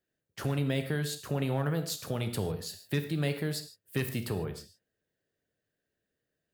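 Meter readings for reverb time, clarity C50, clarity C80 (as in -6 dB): not exponential, 10.0 dB, 12.5 dB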